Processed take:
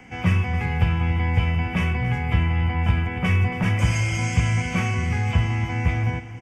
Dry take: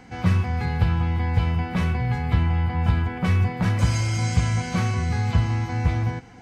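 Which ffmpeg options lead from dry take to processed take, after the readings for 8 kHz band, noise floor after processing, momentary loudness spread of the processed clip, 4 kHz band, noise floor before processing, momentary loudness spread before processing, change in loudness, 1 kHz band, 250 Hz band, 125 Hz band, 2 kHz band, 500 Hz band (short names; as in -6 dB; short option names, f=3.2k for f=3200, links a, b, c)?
0.0 dB, -33 dBFS, 2 LU, +2.0 dB, -39 dBFS, 2 LU, +0.5 dB, 0.0 dB, 0.0 dB, 0.0 dB, +5.0 dB, +0.5 dB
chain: -filter_complex "[0:a]acrossover=split=150|1000|3000[a][b][c][d];[c]aexciter=amount=3.7:drive=5:freq=2.1k[e];[a][b][e][d]amix=inputs=4:normalize=0,aecho=1:1:277:0.2"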